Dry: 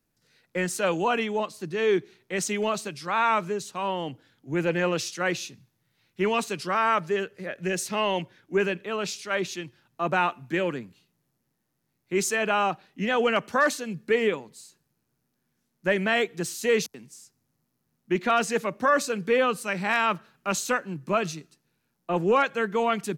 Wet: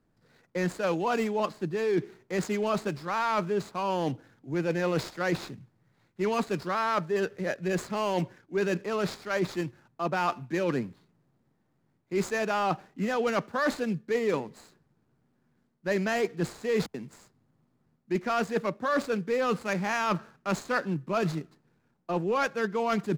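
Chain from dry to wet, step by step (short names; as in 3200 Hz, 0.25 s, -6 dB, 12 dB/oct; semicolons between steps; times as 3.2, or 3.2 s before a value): median filter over 15 samples; high shelf 12000 Hz -7.5 dB; reverse; compressor 6:1, threshold -32 dBFS, peak gain reduction 13.5 dB; reverse; gain +7 dB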